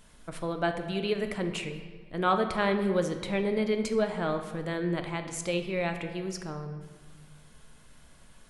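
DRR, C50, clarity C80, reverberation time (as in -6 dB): 6.0 dB, 8.0 dB, 9.5 dB, 1.4 s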